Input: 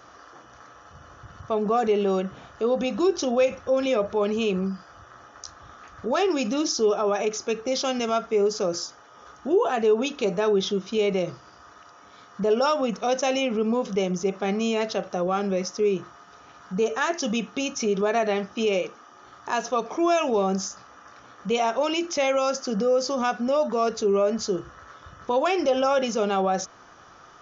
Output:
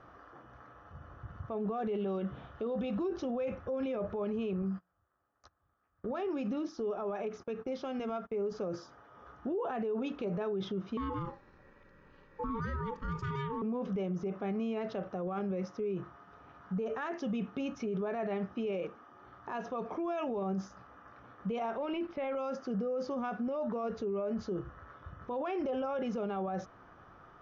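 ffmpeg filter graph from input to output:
-filter_complex "[0:a]asettb=1/sr,asplit=3[a][b][c];[a]atrim=end=1.604[d];[b]atrim=start=1.6:end=2.98,asetpts=PTS-STARTPTS,afade=t=in:d=0.004:c=qsin,afade=t=out:st=1.376:d=0.004:c=qsin,equalizer=f=3.4k:t=o:w=0.54:g=7.5,asplit=2[e][f];[f]adelay=14,volume=-13dB[g];[e][g]amix=inputs=2:normalize=0,atrim=end_sample=60858[h];[c]atrim=start=2.976[i];[d][h]acrossfade=d=0.004:c1=hsin:c2=qsin[j];[j][i]acrossfade=d=0.004:c1=qsin:c2=hsin,asettb=1/sr,asplit=3[k][l][m];[k]atrim=end=4.624[n];[l]atrim=start=4.62:end=8.52,asetpts=PTS-STARTPTS,afade=t=in:d=0.004:c=qsin,afade=t=out:st=3.896:d=0.004:c=qsin,bandreject=f=60:t=h:w=6,bandreject=f=120:t=h:w=6,bandreject=f=180:t=h:w=6,bandreject=f=240:t=h:w=6,acompressor=threshold=-31dB:ratio=2:attack=3.2:release=140:knee=1:detection=peak,agate=range=-26dB:threshold=-41dB:ratio=16:release=100:detection=peak[o];[m]atrim=start=8.516[p];[n][o]acrossfade=d=0.004:c1=hsin:c2=qsin[q];[q][p]acrossfade=d=0.004:c1=qsin:c2=hsin,asettb=1/sr,asplit=3[r][s][t];[r]atrim=end=10.974[u];[s]atrim=start=10.97:end=13.62,asetpts=PTS-STARTPTS,afade=t=in:d=0.004:c=qsin,afade=t=out:st=2.646:d=0.004:c=qsin,asuperstop=centerf=1400:order=4:qfactor=4,aeval=exprs='val(0)*sin(2*PI*680*n/s)':c=same[v];[t]atrim=start=13.616[w];[u][v]acrossfade=d=0.004:c1=hsin:c2=qsin[x];[x][w]acrossfade=d=0.004:c1=qsin:c2=hsin,asettb=1/sr,asplit=3[y][z][aa];[y]atrim=end=21.774[ab];[z]atrim=start=21.77:end=22.35,asetpts=PTS-STARTPTS,afade=t=in:d=0.004:c=qsin,afade=t=out:st=0.576:d=0.004:c=qsin,aeval=exprs='sgn(val(0))*max(abs(val(0))-0.00531,0)':c=same,acrossover=split=3300[ac][ad];[ad]acompressor=threshold=-44dB:ratio=4:attack=1:release=60[ae];[ac][ae]amix=inputs=2:normalize=0,lowpass=f=5.2k:w=0.5412,lowpass=f=5.2k:w=1.3066[af];[aa]atrim=start=22.346[ag];[ab][af]acrossfade=d=0.004:c1=hsin:c2=qsin[ah];[ah][ag]acrossfade=d=0.004:c1=qsin:c2=hsin,lowpass=2.1k,lowshelf=f=250:g=8.5,alimiter=limit=-21.5dB:level=0:latency=1:release=21,volume=-7dB"

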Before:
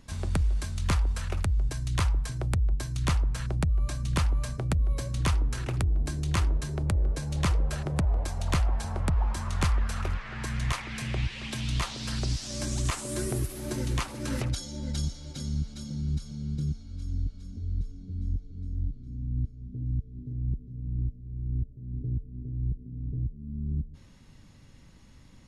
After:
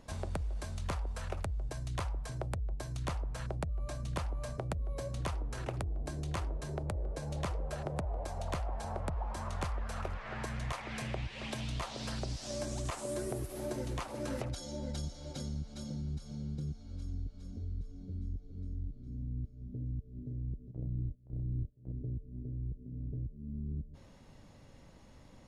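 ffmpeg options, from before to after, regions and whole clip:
-filter_complex "[0:a]asettb=1/sr,asplit=3[a][b][c];[a]atrim=end=20.714[d];[b]atrim=start=20.71:end=21.92,asetpts=PTS-STARTPTS,afade=t=in:d=0.004:c=qsin,afade=t=out:st=1.206:d=0.004:c=qsin,agate=range=-18dB:threshold=-37dB:ratio=16:release=100:detection=peak,acontrast=83,asplit=2[e][f];[f]adelay=26,volume=-5.5dB[g];[e][g]amix=inputs=2:normalize=0,atrim=end_sample=53361[h];[c]atrim=start=21.916[i];[d][h]acrossfade=d=0.004:c1=hsin:c2=qsin[j];[j][i]acrossfade=d=0.004:c1=qsin:c2=hsin,equalizer=f=620:w=0.93:g=11.5,acompressor=threshold=-32dB:ratio=2.5,volume=-4.5dB"

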